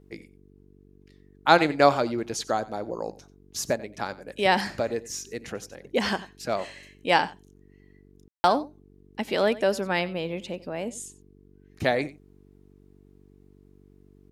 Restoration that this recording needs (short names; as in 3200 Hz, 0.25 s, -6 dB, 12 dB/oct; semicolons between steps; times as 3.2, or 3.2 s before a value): de-hum 48.2 Hz, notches 9; room tone fill 8.28–8.44; inverse comb 91 ms -18.5 dB